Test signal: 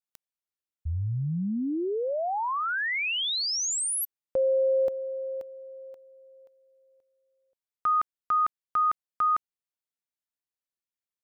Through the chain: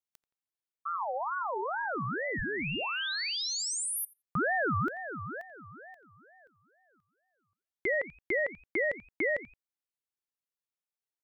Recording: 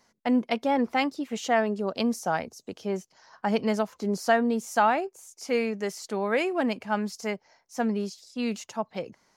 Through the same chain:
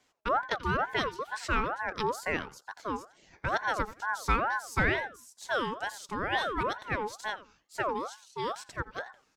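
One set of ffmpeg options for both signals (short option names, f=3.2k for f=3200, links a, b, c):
-filter_complex "[0:a]asplit=2[a][b];[b]adelay=86,lowpass=f=3.6k:p=1,volume=-15.5dB,asplit=2[c][d];[d]adelay=86,lowpass=f=3.6k:p=1,volume=0.22[e];[a][c][e]amix=inputs=3:normalize=0,aeval=exprs='val(0)*sin(2*PI*960*n/s+960*0.35/2.2*sin(2*PI*2.2*n/s))':c=same,volume=-2dB"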